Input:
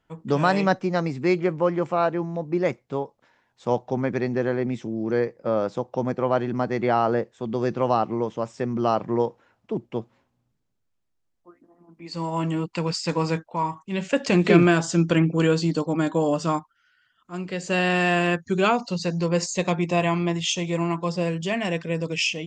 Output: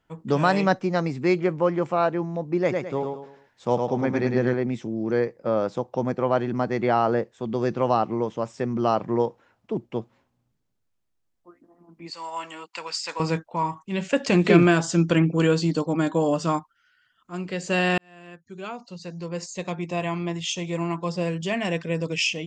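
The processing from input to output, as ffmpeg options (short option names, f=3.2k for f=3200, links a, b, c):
-filter_complex "[0:a]asettb=1/sr,asplit=3[a][b][c];[a]atrim=end=2.614[d];[b]atrim=start=2.61:end=4.54,asetpts=PTS-STARTPTS,afade=t=in:d=0.004:c=qsin,afade=t=out:st=1.926:d=0.004:c=qsin,aecho=1:1:106|212|318|424:0.631|0.221|0.0773|0.0271,atrim=end_sample=85113[e];[c]atrim=start=4.536[f];[d][e]acrossfade=d=0.004:c1=hsin:c2=qsin[g];[g][f]acrossfade=d=0.004:c1=qsin:c2=hsin,asettb=1/sr,asplit=3[h][i][j];[h]atrim=end=12.104[k];[i]atrim=start=12.1:end=13.2,asetpts=PTS-STARTPTS,afade=t=in:d=0.004:c=qsin,afade=t=out:st=1.096:d=0.004:c=qsin,highpass=880[l];[j]atrim=start=13.196[m];[k][l]acrossfade=d=0.004:c1=hsin:c2=qsin[n];[n][m]acrossfade=d=0.004:c1=qsin:c2=hsin,asplit=2[o][p];[o]atrim=end=17.98,asetpts=PTS-STARTPTS,afade=t=out:st=17.976:d=0.004:c=hsin[q];[p]atrim=start=17.98,asetpts=PTS-STARTPTS,afade=t=in:d=3.79[r];[q][r]concat=n=2:v=0:a=1"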